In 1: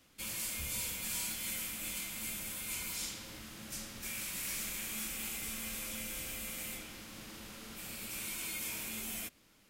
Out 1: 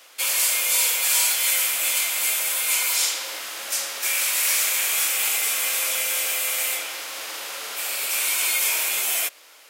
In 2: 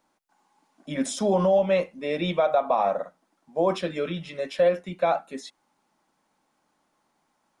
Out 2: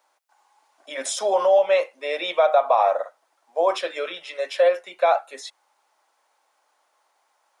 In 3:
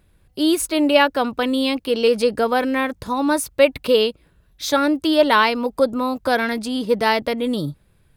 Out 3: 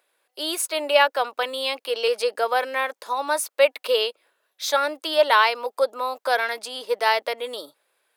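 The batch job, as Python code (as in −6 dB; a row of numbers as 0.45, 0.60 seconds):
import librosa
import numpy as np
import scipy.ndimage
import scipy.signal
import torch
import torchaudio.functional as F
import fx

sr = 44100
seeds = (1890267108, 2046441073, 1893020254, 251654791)

y = scipy.signal.sosfilt(scipy.signal.butter(4, 510.0, 'highpass', fs=sr, output='sos'), x)
y = y * 10.0 ** (-24 / 20.0) / np.sqrt(np.mean(np.square(y)))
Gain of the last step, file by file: +18.0, +5.0, −1.5 decibels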